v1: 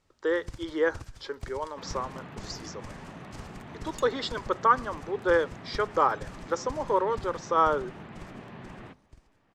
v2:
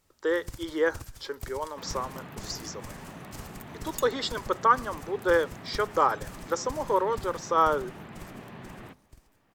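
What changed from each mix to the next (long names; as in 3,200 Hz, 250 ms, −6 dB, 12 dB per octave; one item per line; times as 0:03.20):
master: remove high-frequency loss of the air 75 metres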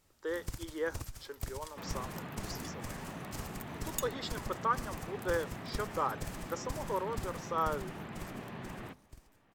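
speech −10.0 dB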